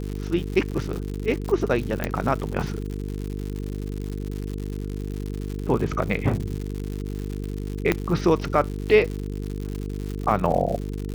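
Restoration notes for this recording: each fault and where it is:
mains buzz 50 Hz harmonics 9 −30 dBFS
surface crackle 140 per second −29 dBFS
0:00.71–0:00.72: drop-out 6.9 ms
0:02.04: click −10 dBFS
0:07.92: click −7 dBFS

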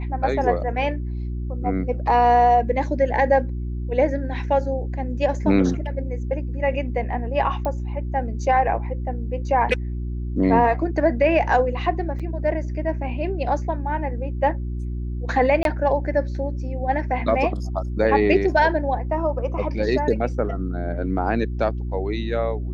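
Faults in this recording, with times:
mains hum 60 Hz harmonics 6 −27 dBFS
0:07.65: click −15 dBFS
0:12.19–0:12.20: drop-out 6.4 ms
0:15.63–0:15.65: drop-out 22 ms

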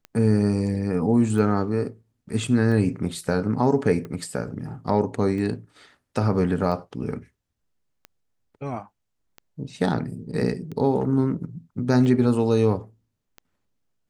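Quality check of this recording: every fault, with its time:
scratch tick 45 rpm −24 dBFS

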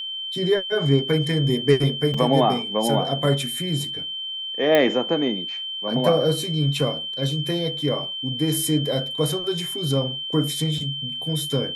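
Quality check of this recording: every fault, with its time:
whistle 3,100 Hz −28 dBFS
0:02.14: drop-out 3.7 ms
0:04.75: click −6 dBFS

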